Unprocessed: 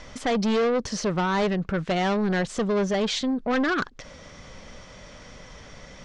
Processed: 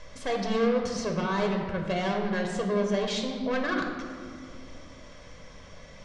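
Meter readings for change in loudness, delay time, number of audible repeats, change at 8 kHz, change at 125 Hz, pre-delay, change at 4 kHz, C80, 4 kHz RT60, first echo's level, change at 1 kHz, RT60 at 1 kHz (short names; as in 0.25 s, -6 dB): -4.0 dB, none, none, -5.5 dB, -4.0 dB, 4 ms, -4.5 dB, 5.5 dB, 1.2 s, none, -4.0 dB, 2.0 s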